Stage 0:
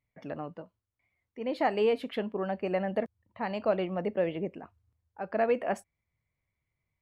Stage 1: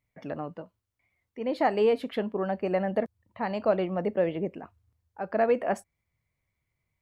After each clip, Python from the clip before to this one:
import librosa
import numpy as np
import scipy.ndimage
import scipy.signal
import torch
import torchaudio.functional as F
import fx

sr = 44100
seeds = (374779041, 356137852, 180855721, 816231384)

y = fx.dynamic_eq(x, sr, hz=2700.0, q=1.7, threshold_db=-53.0, ratio=4.0, max_db=-4)
y = F.gain(torch.from_numpy(y), 3.0).numpy()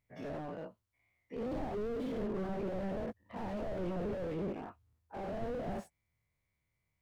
y = fx.spec_dilate(x, sr, span_ms=120)
y = fx.slew_limit(y, sr, full_power_hz=16.0)
y = F.gain(torch.from_numpy(y), -7.5).numpy()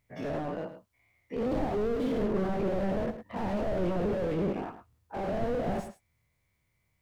y = x + 10.0 ** (-11.0 / 20.0) * np.pad(x, (int(107 * sr / 1000.0), 0))[:len(x)]
y = F.gain(torch.from_numpy(y), 7.5).numpy()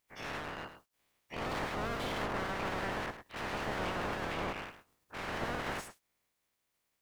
y = fx.spec_clip(x, sr, under_db=26)
y = F.gain(torch.from_numpy(y), -7.0).numpy()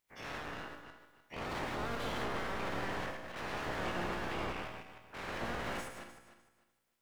y = fx.reverse_delay_fb(x, sr, ms=151, feedback_pct=48, wet_db=-7.5)
y = fx.comb_fb(y, sr, f0_hz=58.0, decay_s=0.9, harmonics='all', damping=0.0, mix_pct=70)
y = F.gain(torch.from_numpy(y), 5.0).numpy()